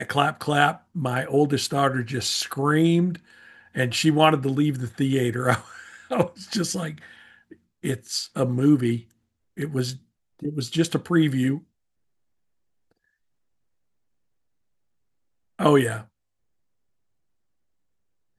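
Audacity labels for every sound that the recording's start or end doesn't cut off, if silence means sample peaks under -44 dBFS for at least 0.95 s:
15.590000	16.040000	sound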